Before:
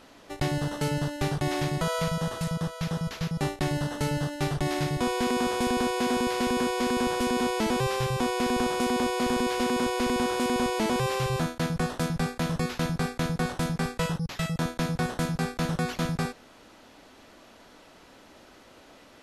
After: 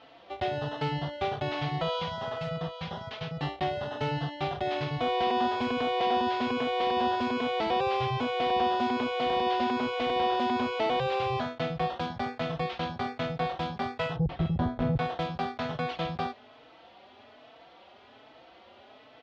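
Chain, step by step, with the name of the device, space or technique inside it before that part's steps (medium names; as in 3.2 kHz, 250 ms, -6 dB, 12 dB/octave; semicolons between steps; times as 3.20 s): 14.16–14.96 s: tilt EQ -4.5 dB/octave; barber-pole flanger into a guitar amplifier (endless flanger 4.1 ms +1.2 Hz; saturation -14.5 dBFS, distortion -18 dB; cabinet simulation 94–4000 Hz, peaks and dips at 180 Hz -10 dB, 300 Hz -6 dB, 720 Hz +7 dB, 1.6 kHz -3 dB, 3.2 kHz +4 dB); trim +1.5 dB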